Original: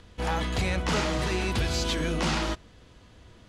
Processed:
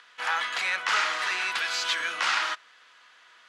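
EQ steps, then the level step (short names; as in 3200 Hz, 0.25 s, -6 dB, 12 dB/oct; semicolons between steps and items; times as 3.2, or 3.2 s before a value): resonant high-pass 1400 Hz, resonance Q 1.8; high shelf 7800 Hz -10.5 dB; +4.0 dB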